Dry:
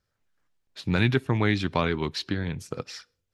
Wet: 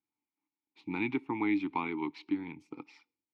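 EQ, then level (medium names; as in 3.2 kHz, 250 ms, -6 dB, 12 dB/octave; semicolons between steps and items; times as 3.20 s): bass shelf 86 Hz -11 dB; dynamic bell 1.4 kHz, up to +8 dB, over -47 dBFS, Q 1.1; vowel filter u; +3.0 dB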